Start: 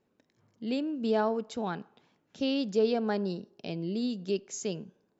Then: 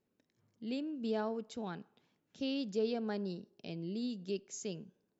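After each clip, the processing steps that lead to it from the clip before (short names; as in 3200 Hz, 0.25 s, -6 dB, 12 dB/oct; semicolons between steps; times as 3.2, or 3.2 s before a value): bell 910 Hz -4.5 dB 1.9 oct; gain -6 dB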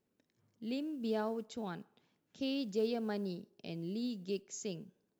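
modulation noise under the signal 34 dB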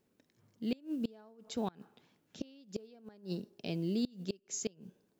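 flipped gate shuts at -30 dBFS, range -27 dB; gain +6 dB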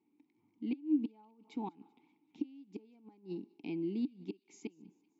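vowel filter u; thin delay 0.193 s, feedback 60%, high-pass 2500 Hz, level -23 dB; gain +9.5 dB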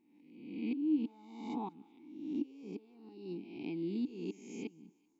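spectral swells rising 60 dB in 0.95 s; gain -2 dB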